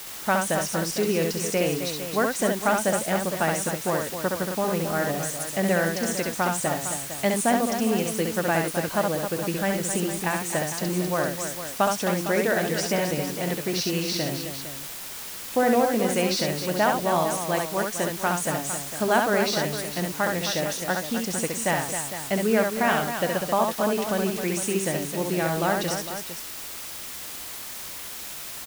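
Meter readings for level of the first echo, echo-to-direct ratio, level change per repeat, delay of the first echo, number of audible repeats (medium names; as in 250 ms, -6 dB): -4.0 dB, -2.0 dB, no regular repeats, 67 ms, 3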